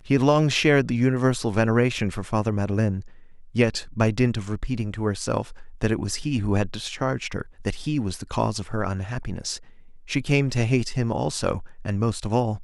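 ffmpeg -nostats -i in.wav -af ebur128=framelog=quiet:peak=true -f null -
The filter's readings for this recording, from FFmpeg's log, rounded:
Integrated loudness:
  I:         -24.6 LUFS
  Threshold: -34.8 LUFS
Loudness range:
  LRA:         4.6 LU
  Threshold: -45.7 LUFS
  LRA low:   -27.6 LUFS
  LRA high:  -23.0 LUFS
True peak:
  Peak:       -5.1 dBFS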